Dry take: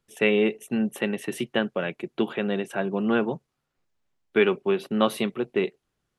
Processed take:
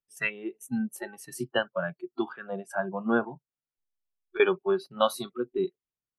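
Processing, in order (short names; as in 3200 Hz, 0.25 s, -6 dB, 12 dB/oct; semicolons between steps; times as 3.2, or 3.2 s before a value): spectral noise reduction 23 dB; 3.24–4.4 compressor 10:1, threshold -37 dBFS, peak gain reduction 17 dB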